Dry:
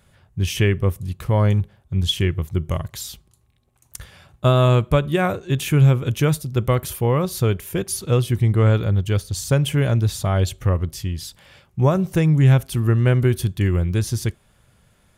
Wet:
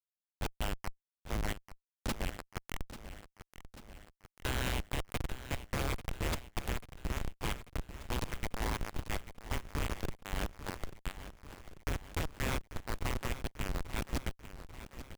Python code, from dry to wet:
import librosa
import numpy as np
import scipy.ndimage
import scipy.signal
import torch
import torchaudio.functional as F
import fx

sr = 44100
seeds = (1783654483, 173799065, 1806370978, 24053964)

y = fx.spec_gate(x, sr, threshold_db=-30, keep='weak')
y = fx.schmitt(y, sr, flips_db=-32.5)
y = fx.echo_feedback(y, sr, ms=841, feedback_pct=59, wet_db=-13)
y = y * 10.0 ** (10.5 / 20.0)